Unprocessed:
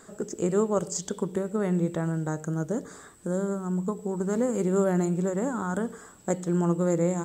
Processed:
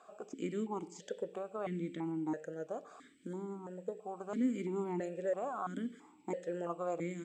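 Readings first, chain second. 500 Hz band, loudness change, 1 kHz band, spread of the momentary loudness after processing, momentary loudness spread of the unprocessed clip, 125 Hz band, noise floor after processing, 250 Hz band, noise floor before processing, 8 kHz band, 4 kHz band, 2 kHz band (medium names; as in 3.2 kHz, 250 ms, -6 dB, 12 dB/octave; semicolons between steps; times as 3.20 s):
-11.0 dB, -11.5 dB, -7.0 dB, 9 LU, 7 LU, -17.5 dB, -62 dBFS, -11.5 dB, -51 dBFS, -21.0 dB, no reading, -10.5 dB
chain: tilt shelf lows -3.5 dB; stepped vowel filter 3 Hz; trim +5 dB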